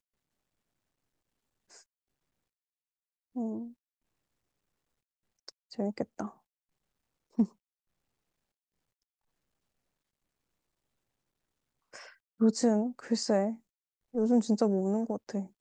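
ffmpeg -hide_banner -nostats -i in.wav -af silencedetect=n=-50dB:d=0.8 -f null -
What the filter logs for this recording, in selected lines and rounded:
silence_start: 0.00
silence_end: 1.71 | silence_duration: 1.71
silence_start: 1.81
silence_end: 3.35 | silence_duration: 1.55
silence_start: 3.72
silence_end: 5.48 | silence_duration: 1.76
silence_start: 6.33
silence_end: 7.38 | silence_duration: 1.05
silence_start: 7.49
silence_end: 11.93 | silence_duration: 4.44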